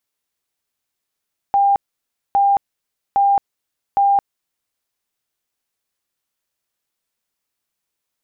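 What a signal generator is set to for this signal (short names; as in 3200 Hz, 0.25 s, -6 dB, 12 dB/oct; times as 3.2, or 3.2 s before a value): tone bursts 799 Hz, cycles 175, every 0.81 s, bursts 4, -11 dBFS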